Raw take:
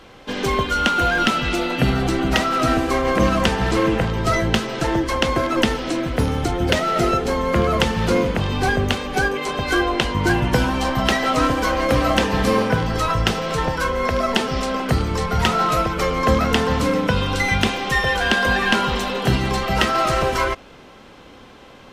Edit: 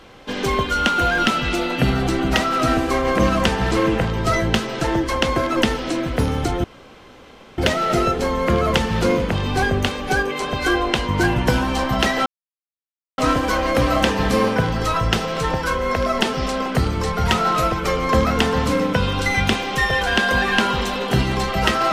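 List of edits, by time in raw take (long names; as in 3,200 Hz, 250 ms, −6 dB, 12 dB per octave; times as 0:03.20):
0:06.64: splice in room tone 0.94 s
0:11.32: splice in silence 0.92 s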